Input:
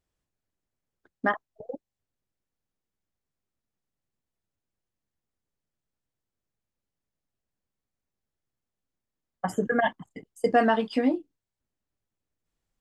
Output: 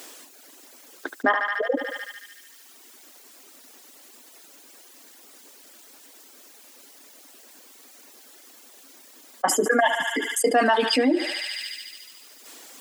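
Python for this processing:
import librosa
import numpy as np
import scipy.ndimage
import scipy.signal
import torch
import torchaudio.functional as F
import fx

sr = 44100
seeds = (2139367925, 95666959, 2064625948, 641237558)

y = fx.dereverb_blind(x, sr, rt60_s=1.0)
y = scipy.signal.sosfilt(scipy.signal.ellip(4, 1.0, 60, 260.0, 'highpass', fs=sr, output='sos'), y)
y = fx.high_shelf(y, sr, hz=2800.0, db=8.5)
y = fx.echo_thinned(y, sr, ms=73, feedback_pct=78, hz=1100.0, wet_db=-16)
y = fx.env_flatten(y, sr, amount_pct=70)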